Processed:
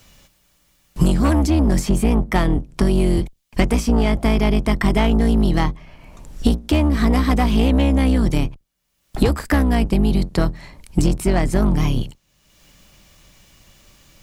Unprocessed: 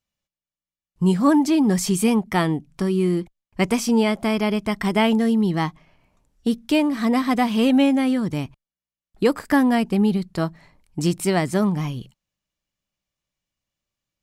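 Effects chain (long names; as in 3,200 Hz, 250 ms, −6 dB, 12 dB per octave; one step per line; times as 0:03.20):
sub-octave generator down 2 octaves, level +3 dB
0:09.62–0:10.35: downward compressor 4 to 1, threshold −15 dBFS, peak gain reduction 5 dB
soft clipping −13.5 dBFS, distortion −13 dB
multiband upward and downward compressor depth 100%
level +3 dB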